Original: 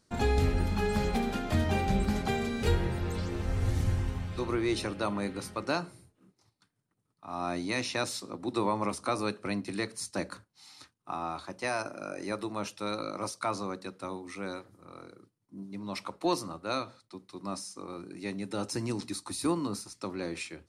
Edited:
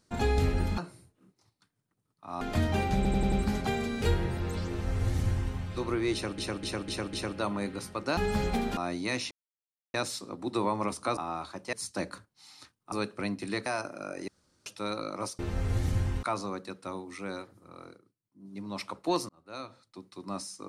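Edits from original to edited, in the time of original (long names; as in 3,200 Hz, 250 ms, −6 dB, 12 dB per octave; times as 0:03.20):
0:00.78–0:01.38: swap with 0:05.78–0:07.41
0:01.93: stutter 0.09 s, 5 plays
0:03.31–0:04.15: duplicate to 0:13.40
0:04.74–0:04.99: repeat, 5 plays
0:07.95: splice in silence 0.63 s
0:09.18–0:09.92: swap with 0:11.11–0:11.67
0:12.29–0:12.67: fill with room tone
0:15.07–0:15.71: duck −10 dB, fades 0.12 s
0:16.46–0:17.25: fade in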